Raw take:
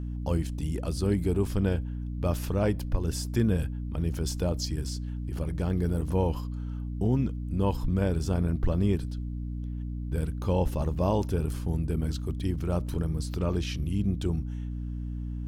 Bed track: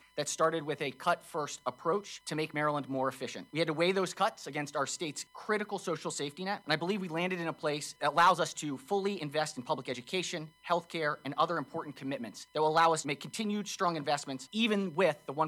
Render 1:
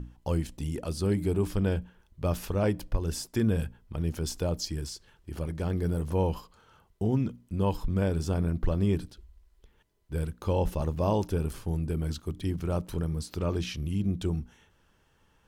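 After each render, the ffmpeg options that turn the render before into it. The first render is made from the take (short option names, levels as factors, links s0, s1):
-af "bandreject=f=60:t=h:w=6,bandreject=f=120:t=h:w=6,bandreject=f=180:t=h:w=6,bandreject=f=240:t=h:w=6,bandreject=f=300:t=h:w=6"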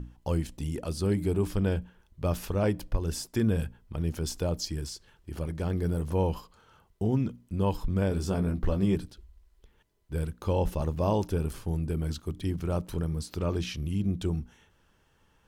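-filter_complex "[0:a]asettb=1/sr,asplit=3[s0][s1][s2];[s0]atrim=end=8.104[s3];[s1]atrim=start=8.1:end=8.96,asetpts=PTS-STARTPTS,afade=t=in:d=0.004:c=qsin,afade=t=out:st=0.856:d=0.004:c=qsin,asplit=2[s4][s5];[s5]adelay=16,volume=0.562[s6];[s4][s6]amix=inputs=2:normalize=0,atrim=end_sample=37926[s7];[s2]atrim=start=8.956[s8];[s3][s7]acrossfade=d=0.004:c1=hsin:c2=qsin[s9];[s9][s8]acrossfade=d=0.004:c1=qsin:c2=hsin"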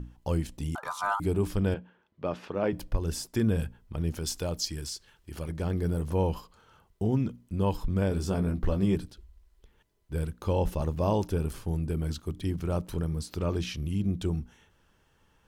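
-filter_complex "[0:a]asettb=1/sr,asplit=3[s0][s1][s2];[s0]atrim=end=0.754[s3];[s1]atrim=start=0.75:end=1.2,asetpts=PTS-STARTPTS,afade=t=in:d=0.004:c=qsin,afade=t=out:st=0.446:d=0.004:c=qsin,aeval=exprs='val(0)*sin(2*PI*1100*n/s)':c=same[s4];[s2]atrim=start=1.196[s5];[s3][s4]acrossfade=d=0.004:c1=hsin:c2=qsin[s6];[s6][s5]acrossfade=d=0.004:c1=qsin:c2=hsin,asettb=1/sr,asplit=3[s7][s8][s9];[s7]atrim=end=1.744[s10];[s8]atrim=start=1.74:end=2.73,asetpts=PTS-STARTPTS,afade=t=in:d=0.004:c=qsin,afade=t=out:st=0.986:d=0.004:c=qsin,highpass=220,lowpass=3000[s11];[s9]atrim=start=2.726[s12];[s10][s11]acrossfade=d=0.004:c1=hsin:c2=qsin[s13];[s13][s12]acrossfade=d=0.004:c1=qsin:c2=hsin,asettb=1/sr,asplit=3[s14][s15][s16];[s14]atrim=end=4.194[s17];[s15]atrim=start=4.19:end=5.49,asetpts=PTS-STARTPTS,afade=t=in:d=0.004:c=qsin,afade=t=out:st=1.296:d=0.004:c=qsin,tiltshelf=f=1200:g=-3.5[s18];[s16]atrim=start=5.486[s19];[s17][s18]acrossfade=d=0.004:c1=hsin:c2=qsin[s20];[s20][s19]acrossfade=d=0.004:c1=qsin:c2=hsin"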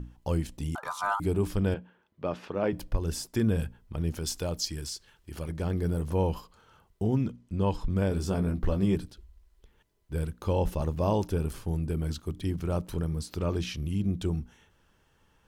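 -filter_complex "[0:a]asettb=1/sr,asplit=3[s0][s1][s2];[s0]atrim=end=7.314[s3];[s1]atrim=start=7.31:end=7.9,asetpts=PTS-STARTPTS,afade=t=in:d=0.004:c=qsin,afade=t=out:st=0.586:d=0.004:c=qsin,lowpass=7800[s4];[s2]atrim=start=7.896[s5];[s3][s4]acrossfade=d=0.004:c1=hsin:c2=qsin[s6];[s6][s5]acrossfade=d=0.004:c1=qsin:c2=hsin"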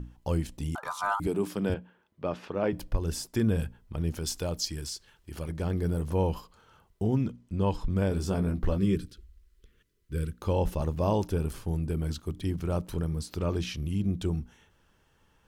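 -filter_complex "[0:a]asettb=1/sr,asplit=3[s0][s1][s2];[s0]atrim=end=1.274[s3];[s1]atrim=start=1.27:end=1.7,asetpts=PTS-STARTPTS,afade=t=in:d=0.004:c=qsin,afade=t=out:st=0.426:d=0.004:c=qsin,highpass=f=160:w=0.5412,highpass=f=160:w=1.3066[s4];[s2]atrim=start=1.696[s5];[s3][s4]acrossfade=d=0.004:c1=hsin:c2=qsin[s6];[s6][s5]acrossfade=d=0.004:c1=qsin:c2=hsin,asettb=1/sr,asplit=3[s7][s8][s9];[s7]atrim=end=8.784[s10];[s8]atrim=start=8.78:end=10.42,asetpts=PTS-STARTPTS,afade=t=in:d=0.004:c=qsin,afade=t=out:st=1.636:d=0.004:c=qsin,asuperstop=centerf=780:order=4:qfactor=1.1[s11];[s9]atrim=start=10.416[s12];[s10][s11]acrossfade=d=0.004:c1=hsin:c2=qsin[s13];[s13][s12]acrossfade=d=0.004:c1=qsin:c2=hsin"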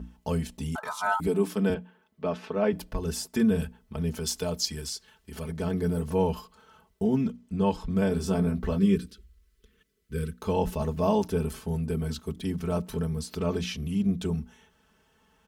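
-af "highpass=58,aecho=1:1:4.6:0.9"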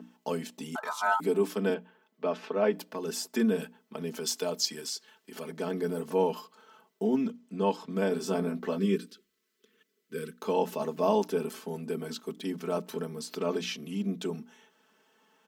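-af "highpass=f=230:w=0.5412,highpass=f=230:w=1.3066,equalizer=f=9800:w=4.5:g=-7.5"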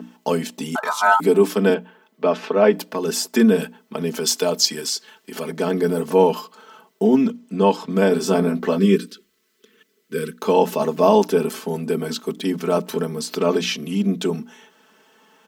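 -af "volume=3.76,alimiter=limit=0.708:level=0:latency=1"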